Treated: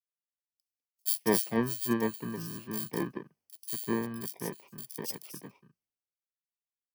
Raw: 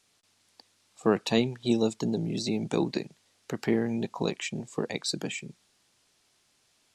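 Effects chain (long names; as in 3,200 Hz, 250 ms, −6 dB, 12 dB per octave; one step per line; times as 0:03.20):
samples in bit-reversed order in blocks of 32 samples
multiband delay without the direct sound highs, lows 200 ms, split 3,100 Hz
multiband upward and downward expander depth 100%
level −7 dB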